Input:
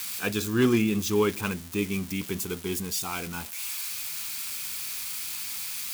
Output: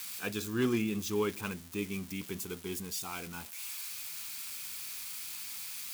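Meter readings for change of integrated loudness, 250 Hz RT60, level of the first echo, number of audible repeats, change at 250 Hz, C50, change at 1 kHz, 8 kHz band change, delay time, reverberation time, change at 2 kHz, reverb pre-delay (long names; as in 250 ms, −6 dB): −7.5 dB, no reverb audible, no echo audible, no echo audible, −8.0 dB, no reverb audible, −7.5 dB, −7.5 dB, no echo audible, no reverb audible, −7.5 dB, no reverb audible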